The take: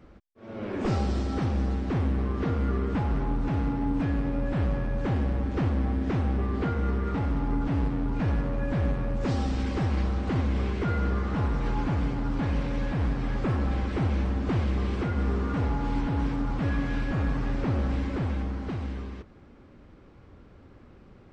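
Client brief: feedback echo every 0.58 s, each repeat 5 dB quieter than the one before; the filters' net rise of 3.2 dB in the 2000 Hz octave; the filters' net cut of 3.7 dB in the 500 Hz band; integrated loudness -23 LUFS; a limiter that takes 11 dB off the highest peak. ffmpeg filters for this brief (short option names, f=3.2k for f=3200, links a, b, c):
-af "equalizer=f=500:t=o:g=-5,equalizer=f=2k:t=o:g=4.5,alimiter=level_in=4dB:limit=-24dB:level=0:latency=1,volume=-4dB,aecho=1:1:580|1160|1740|2320|2900|3480|4060:0.562|0.315|0.176|0.0988|0.0553|0.031|0.0173,volume=11.5dB"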